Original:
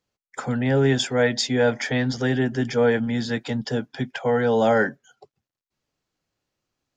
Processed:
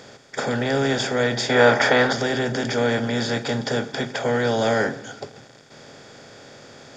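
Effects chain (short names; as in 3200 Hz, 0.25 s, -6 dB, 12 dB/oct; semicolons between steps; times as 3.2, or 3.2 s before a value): per-bin compression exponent 0.4; 1.49–2.13 bell 1100 Hz +10.5 dB 2.6 oct; on a send: reverb RT60 1.1 s, pre-delay 3 ms, DRR 12.5 dB; on the sum: gain -5 dB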